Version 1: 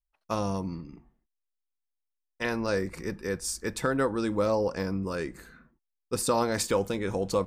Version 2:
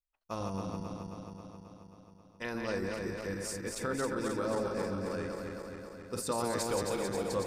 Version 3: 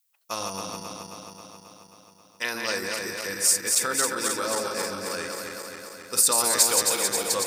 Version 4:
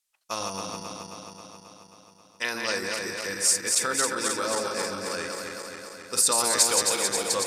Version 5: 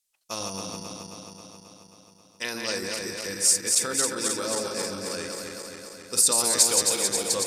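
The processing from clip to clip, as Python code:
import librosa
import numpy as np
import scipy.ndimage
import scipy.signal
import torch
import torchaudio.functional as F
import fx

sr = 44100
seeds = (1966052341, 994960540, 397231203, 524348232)

y1 = fx.reverse_delay_fb(x, sr, ms=134, feedback_pct=81, wet_db=-4)
y1 = y1 * librosa.db_to_amplitude(-8.5)
y2 = fx.tilt_eq(y1, sr, slope=4.5)
y2 = y2 * librosa.db_to_amplitude(7.5)
y3 = scipy.signal.sosfilt(scipy.signal.butter(2, 10000.0, 'lowpass', fs=sr, output='sos'), y2)
y4 = fx.peak_eq(y3, sr, hz=1300.0, db=-8.0, octaves=2.3)
y4 = y4 * librosa.db_to_amplitude(2.5)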